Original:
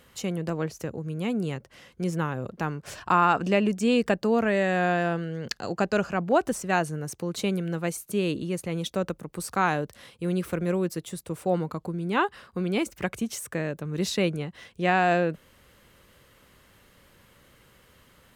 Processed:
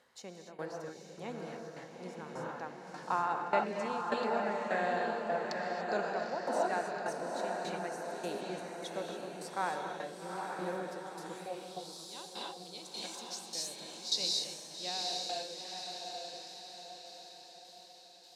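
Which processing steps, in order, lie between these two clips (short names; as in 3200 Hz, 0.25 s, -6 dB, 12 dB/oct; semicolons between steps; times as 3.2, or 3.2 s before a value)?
band shelf 1900 Hz -15.5 dB; non-linear reverb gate 0.31 s rising, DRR 0 dB; tremolo saw down 1.7 Hz, depth 85%; diffused feedback echo 0.847 s, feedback 51%, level -4 dB; band-pass sweep 1700 Hz -> 4300 Hz, 11.29–11.9; gain +8 dB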